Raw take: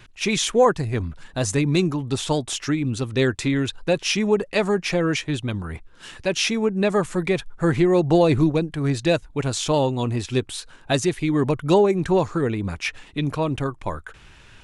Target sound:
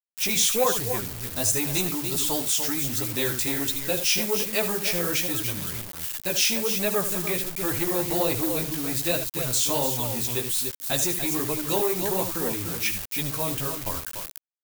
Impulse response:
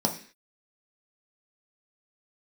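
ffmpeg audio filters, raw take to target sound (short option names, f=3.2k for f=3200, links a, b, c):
-filter_complex "[0:a]aecho=1:1:75.8|291.5:0.282|0.355,asplit=2[a][b];[b]asoftclip=type=tanh:threshold=-19.5dB,volume=-11dB[c];[a][c]amix=inputs=2:normalize=0,flanger=delay=9.2:depth=8.5:regen=1:speed=1.3:shape=sinusoidal,acrusher=bits=5:mix=0:aa=0.000001,acrossover=split=430[d][e];[d]volume=24.5dB,asoftclip=hard,volume=-24.5dB[f];[f][e]amix=inputs=2:normalize=0,aemphasis=mode=production:type=75fm,volume=-5dB"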